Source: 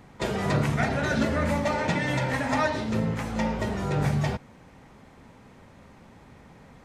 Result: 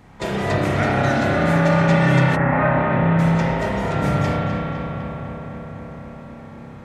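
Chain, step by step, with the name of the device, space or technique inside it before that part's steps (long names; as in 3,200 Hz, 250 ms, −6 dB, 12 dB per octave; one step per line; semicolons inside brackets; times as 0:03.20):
dub delay into a spring reverb (feedback echo with a low-pass in the loop 253 ms, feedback 79%, low-pass 3,600 Hz, level −6 dB; spring reverb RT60 2.3 s, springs 30 ms, chirp 55 ms, DRR −3.5 dB)
0:02.35–0:03.18: low-pass filter 1,900 Hz → 3,100 Hz 24 dB per octave
level +1.5 dB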